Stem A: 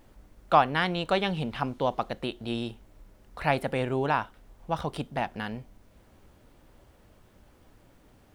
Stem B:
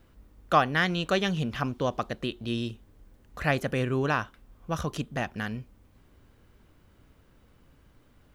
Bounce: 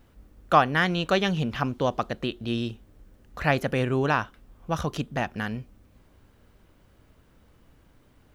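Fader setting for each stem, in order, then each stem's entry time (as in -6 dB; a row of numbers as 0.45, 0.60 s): -7.5, 0.0 dB; 0.00, 0.00 s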